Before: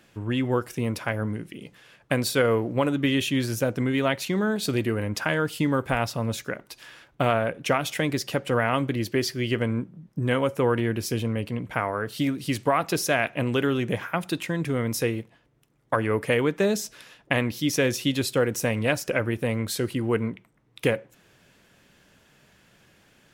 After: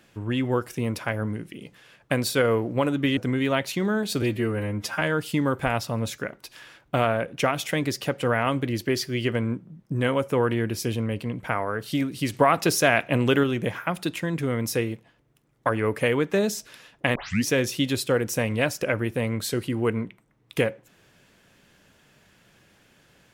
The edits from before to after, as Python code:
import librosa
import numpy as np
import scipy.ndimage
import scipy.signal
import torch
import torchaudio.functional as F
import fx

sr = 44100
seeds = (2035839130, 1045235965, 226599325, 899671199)

y = fx.edit(x, sr, fx.cut(start_s=3.17, length_s=0.53),
    fx.stretch_span(start_s=4.75, length_s=0.53, factor=1.5),
    fx.clip_gain(start_s=12.6, length_s=1.1, db=3.5),
    fx.tape_start(start_s=17.42, length_s=0.3), tone=tone)